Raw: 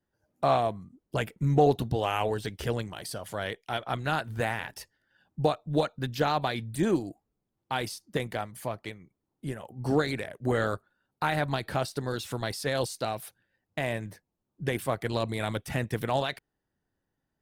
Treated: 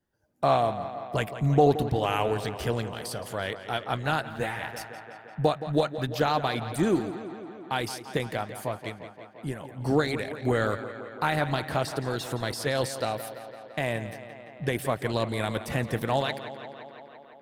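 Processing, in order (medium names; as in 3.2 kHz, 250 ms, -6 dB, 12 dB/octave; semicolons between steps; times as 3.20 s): on a send: tape echo 171 ms, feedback 79%, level -11.5 dB, low-pass 5 kHz; 4.22–4.63 s: on the sum: three-phase chorus; trim +1.5 dB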